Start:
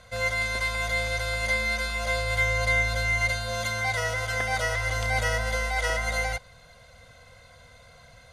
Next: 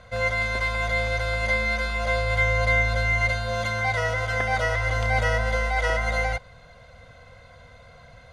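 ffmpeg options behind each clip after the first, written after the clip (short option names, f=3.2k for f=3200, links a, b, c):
-af "aemphasis=mode=reproduction:type=75kf,volume=4.5dB"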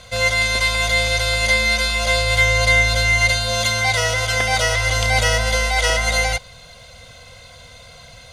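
-af "aexciter=amount=4:drive=5.5:freq=2.5k,volume=4dB"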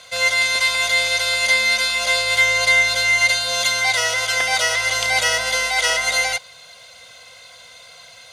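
-af "highpass=f=940:p=1,volume=1.5dB"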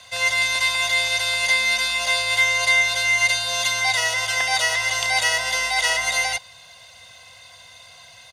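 -filter_complex "[0:a]acrossover=split=310|660|3800[a][b][c][d];[a]alimiter=level_in=18.5dB:limit=-24dB:level=0:latency=1,volume=-18.5dB[e];[e][b][c][d]amix=inputs=4:normalize=0,equalizer=f=92:t=o:w=0.58:g=6.5,aecho=1:1:1.1:0.45,volume=-3dB"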